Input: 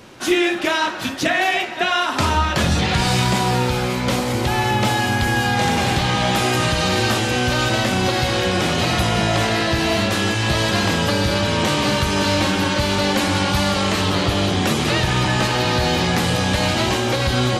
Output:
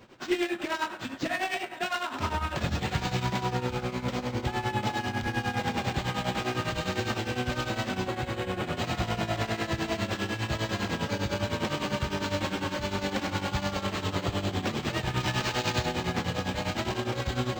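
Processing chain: self-modulated delay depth 0.1 ms; 8.06–8.77 s: distance through air 160 m; tremolo triangle 9.9 Hz, depth 85%; 15.20–15.86 s: treble shelf 2.8 kHz +8.5 dB; reverberation RT60 1.2 s, pre-delay 8 ms, DRR 17 dB; decimation joined by straight lines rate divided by 4×; trim -7 dB

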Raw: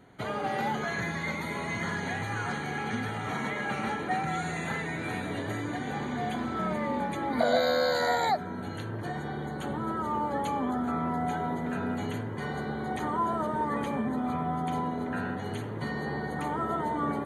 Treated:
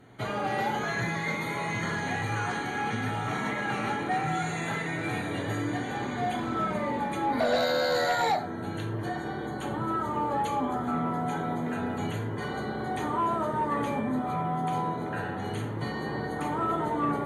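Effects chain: gated-style reverb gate 130 ms falling, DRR 2.5 dB; sine folder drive 4 dB, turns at -12 dBFS; trim -7.5 dB

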